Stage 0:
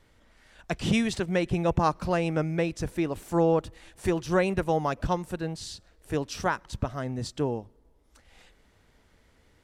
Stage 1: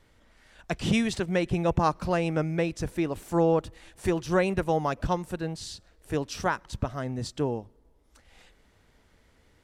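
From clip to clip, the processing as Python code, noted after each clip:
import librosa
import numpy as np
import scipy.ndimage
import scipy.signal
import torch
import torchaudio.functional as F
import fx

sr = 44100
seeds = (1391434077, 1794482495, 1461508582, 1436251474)

y = x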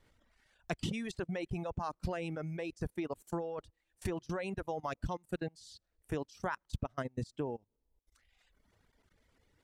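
y = fx.level_steps(x, sr, step_db=16)
y = fx.transient(y, sr, attack_db=4, sustain_db=-4)
y = fx.dereverb_blind(y, sr, rt60_s=1.5)
y = y * 10.0 ** (-4.0 / 20.0)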